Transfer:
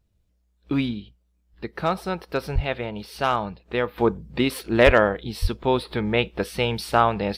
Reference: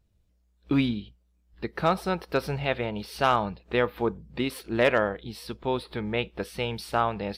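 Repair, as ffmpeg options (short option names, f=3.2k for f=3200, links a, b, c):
-filter_complex "[0:a]asplit=3[a][b][c];[a]afade=t=out:st=2.54:d=0.02[d];[b]highpass=f=140:w=0.5412,highpass=f=140:w=1.3066,afade=t=in:st=2.54:d=0.02,afade=t=out:st=2.66:d=0.02[e];[c]afade=t=in:st=2.66:d=0.02[f];[d][e][f]amix=inputs=3:normalize=0,asplit=3[g][h][i];[g]afade=t=out:st=4.85:d=0.02[j];[h]highpass=f=140:w=0.5412,highpass=f=140:w=1.3066,afade=t=in:st=4.85:d=0.02,afade=t=out:st=4.97:d=0.02[k];[i]afade=t=in:st=4.97:d=0.02[l];[j][k][l]amix=inputs=3:normalize=0,asplit=3[m][n][o];[m]afade=t=out:st=5.41:d=0.02[p];[n]highpass=f=140:w=0.5412,highpass=f=140:w=1.3066,afade=t=in:st=5.41:d=0.02,afade=t=out:st=5.53:d=0.02[q];[o]afade=t=in:st=5.53:d=0.02[r];[p][q][r]amix=inputs=3:normalize=0,asetnsamples=n=441:p=0,asendcmd='3.98 volume volume -6.5dB',volume=0dB"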